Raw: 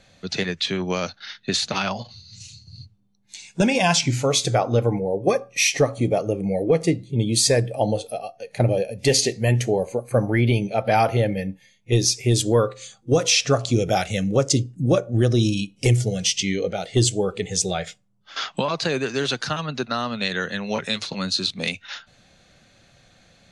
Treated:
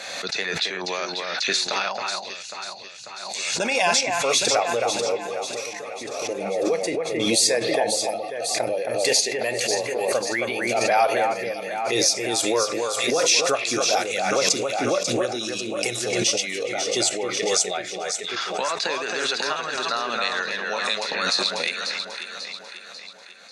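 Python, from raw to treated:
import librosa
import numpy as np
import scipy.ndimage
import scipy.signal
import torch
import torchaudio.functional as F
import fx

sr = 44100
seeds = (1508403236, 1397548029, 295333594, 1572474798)

y = scipy.signal.sosfilt(scipy.signal.butter(2, 600.0, 'highpass', fs=sr, output='sos'), x)
y = fx.notch(y, sr, hz=3100.0, q=8.9)
y = fx.level_steps(y, sr, step_db=18, at=(5.21, 6.28))
y = fx.echo_alternate(y, sr, ms=271, hz=2500.0, feedback_pct=71, wet_db=-4)
y = fx.pre_swell(y, sr, db_per_s=31.0)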